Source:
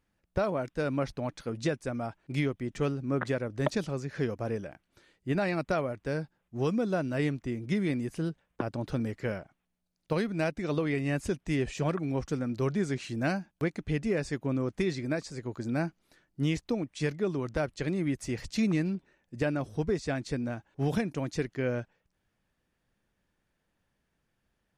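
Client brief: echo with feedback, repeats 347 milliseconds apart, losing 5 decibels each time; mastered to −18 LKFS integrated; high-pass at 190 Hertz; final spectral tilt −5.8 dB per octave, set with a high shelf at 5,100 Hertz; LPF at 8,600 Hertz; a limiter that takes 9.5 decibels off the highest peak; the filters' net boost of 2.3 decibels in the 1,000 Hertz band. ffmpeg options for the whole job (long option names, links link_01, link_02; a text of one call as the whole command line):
ffmpeg -i in.wav -af "highpass=190,lowpass=8600,equalizer=frequency=1000:width_type=o:gain=3.5,highshelf=frequency=5100:gain=-5.5,alimiter=limit=-22dB:level=0:latency=1,aecho=1:1:347|694|1041|1388|1735|2082|2429:0.562|0.315|0.176|0.0988|0.0553|0.031|0.0173,volume=15.5dB" out.wav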